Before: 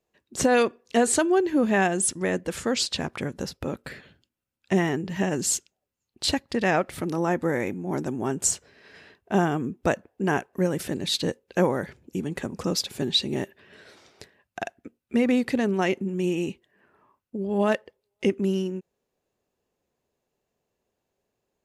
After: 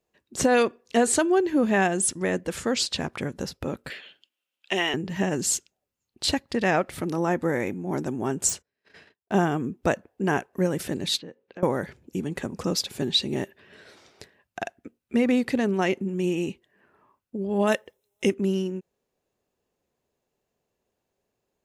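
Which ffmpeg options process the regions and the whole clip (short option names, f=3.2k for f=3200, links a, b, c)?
-filter_complex "[0:a]asettb=1/sr,asplit=3[a][b][c];[a]atrim=end=3.904[d];[b]atrim=start=3.9:end=4.94,asetpts=PTS-STARTPTS,afade=t=in:d=0.004:c=qsin,afade=t=out:st=1.036:d=0.004:c=qsin,highpass=440,equalizer=f=3k:t=o:w=0.68:g=14[e];[c]atrim=start=4.936[f];[d][e]acrossfade=d=0.004:c1=hsin:c2=qsin[g];[g][f]acrossfade=d=0.004:c1=qsin:c2=hsin,asettb=1/sr,asplit=3[h][i][j];[h]atrim=end=8.494[k];[i]atrim=start=8.49:end=9.32,asetpts=PTS-STARTPTS,afade=t=in:d=0.004:c=qsin,afade=t=out:st=0.826:d=0.004:c=qsin,agate=range=-30dB:threshold=-51dB:ratio=16:release=100:detection=peak,aeval=exprs='0.075*(abs(mod(val(0)/0.075+3,4)-2)-1)':c=same[l];[j]atrim=start=9.316[m];[k][l]acrossfade=d=0.004:c1=hsin:c2=qsin[n];[n][m]acrossfade=d=0.004:c1=qsin:c2=hsin,asettb=1/sr,asplit=3[o][p][q];[o]atrim=end=11.194[r];[p]atrim=start=11.19:end=11.63,asetpts=PTS-STARTPTS,afade=t=in:d=0.004:c=qsin,afade=t=out:st=0.436:d=0.004:c=qsin,acompressor=threshold=-43dB:ratio=2.5:attack=3.2:release=140:knee=1:detection=peak,highpass=140,lowpass=2.8k[s];[q]atrim=start=11.626[t];[r][s]acrossfade=d=0.004:c1=hsin:c2=qsin[u];[u][t]acrossfade=d=0.004:c1=qsin:c2=hsin,asettb=1/sr,asplit=3[v][w][x];[v]atrim=end=17.674[y];[w]atrim=start=17.67:end=18.34,asetpts=PTS-STARTPTS,afade=t=in:d=0.004:c=qsin,afade=t=out:st=0.666:d=0.004:c=qsin,asuperstop=centerf=4600:order=20:qfactor=6.7,highshelf=f=4.7k:g=12[z];[x]atrim=start=18.336[aa];[y][z]acrossfade=d=0.004:c1=hsin:c2=qsin[ab];[ab][aa]acrossfade=d=0.004:c1=qsin:c2=hsin"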